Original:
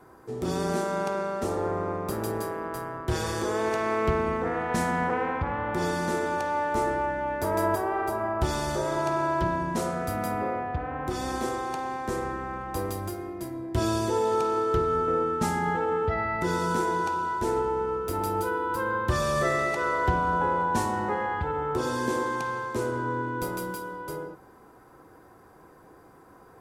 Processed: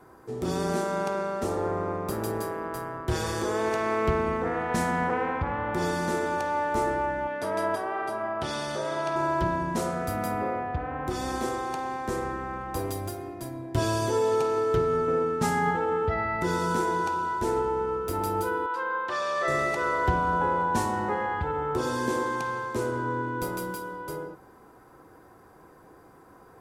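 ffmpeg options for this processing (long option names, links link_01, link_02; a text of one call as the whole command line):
ffmpeg -i in.wav -filter_complex "[0:a]asettb=1/sr,asplit=3[link_01][link_02][link_03];[link_01]atrim=end=7.274[link_04];[link_02]atrim=start=7.27:end=9.16,asetpts=PTS-STARTPTS,afade=type=in:duration=0.004:curve=qsin,afade=type=out:start_time=1.886:duration=0.004:curve=qsin,highpass=190,equalizer=frequency=360:width_type=q:width=4:gain=-8,equalizer=frequency=880:width_type=q:width=4:gain=-5,equalizer=frequency=3200:width_type=q:width=4:gain=4,equalizer=frequency=7300:width_type=q:width=4:gain=-9,lowpass=frequency=9800:width=0.5412,lowpass=frequency=9800:width=1.3066[link_05];[link_03]atrim=start=9.156[link_06];[link_04][link_05]acrossfade=duration=0.004:curve1=hsin:curve2=qsin[link_07];[link_07][link_06]acrossfade=duration=0.004:curve1=qsin:curve2=hsin,asettb=1/sr,asplit=3[link_08][link_09][link_10];[link_08]atrim=end=12.784[link_11];[link_09]atrim=start=12.78:end=15.71,asetpts=PTS-STARTPTS,afade=type=in:duration=0.004:curve=qsin,afade=type=out:start_time=2.926:duration=0.004:curve=qsin,aecho=1:1:7.3:0.52,atrim=end_sample=129213[link_12];[link_10]atrim=start=15.706[link_13];[link_11][link_12]acrossfade=duration=0.004:curve1=hsin:curve2=qsin[link_14];[link_14][link_13]acrossfade=duration=0.004:curve1=qsin:curve2=hsin,asettb=1/sr,asplit=3[link_15][link_16][link_17];[link_15]atrim=end=18.664[link_18];[link_16]atrim=start=18.66:end=19.48,asetpts=PTS-STARTPTS,afade=type=in:duration=0.004:curve=qsin,afade=type=out:start_time=0.816:duration=0.004:curve=qsin,highpass=580,lowpass=4400[link_19];[link_17]atrim=start=19.476[link_20];[link_18][link_19]acrossfade=duration=0.004:curve1=hsin:curve2=qsin[link_21];[link_21][link_20]acrossfade=duration=0.004:curve1=qsin:curve2=hsin" out.wav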